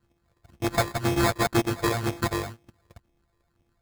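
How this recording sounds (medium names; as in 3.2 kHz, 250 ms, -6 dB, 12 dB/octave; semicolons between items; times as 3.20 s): a buzz of ramps at a fixed pitch in blocks of 128 samples; phasing stages 12, 2 Hz, lowest notch 220–1300 Hz; aliases and images of a low sample rate 2.9 kHz, jitter 0%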